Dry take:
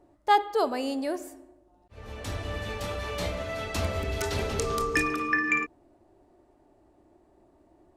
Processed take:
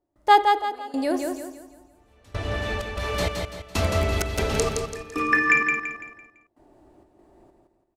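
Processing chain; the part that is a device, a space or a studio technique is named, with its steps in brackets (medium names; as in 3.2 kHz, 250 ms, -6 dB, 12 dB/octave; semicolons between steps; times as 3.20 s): 2.35–2.91 s: treble shelf 9.3 kHz -7.5 dB; trance gate with a delay (trance gate ".xx...xxx" 96 bpm -24 dB; feedback delay 168 ms, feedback 38%, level -4.5 dB); trim +5.5 dB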